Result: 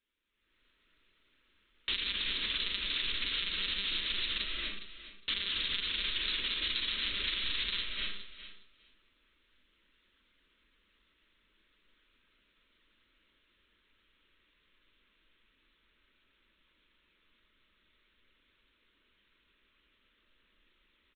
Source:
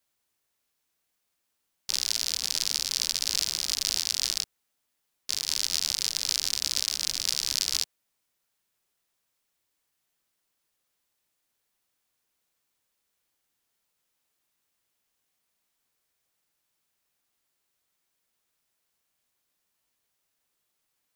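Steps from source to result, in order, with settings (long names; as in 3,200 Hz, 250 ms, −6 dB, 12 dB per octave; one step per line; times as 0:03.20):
one-pitch LPC vocoder at 8 kHz 200 Hz
phaser with its sweep stopped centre 310 Hz, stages 4
double-tracking delay 40 ms −12.5 dB
on a send at −3 dB: high-frequency loss of the air 260 metres + convolution reverb RT60 0.45 s, pre-delay 198 ms
on the sum: downward compressor 6 to 1, threshold −47 dBFS, peak gain reduction 14 dB
repeating echo 411 ms, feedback 15%, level −13 dB
automatic gain control gain up to 15 dB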